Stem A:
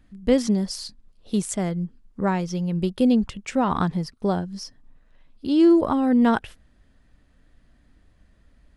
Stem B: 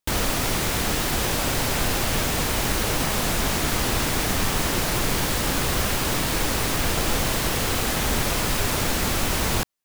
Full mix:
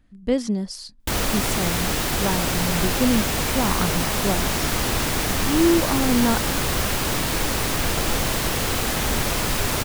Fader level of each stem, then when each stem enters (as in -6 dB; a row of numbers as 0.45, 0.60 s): -2.5, +0.5 dB; 0.00, 1.00 s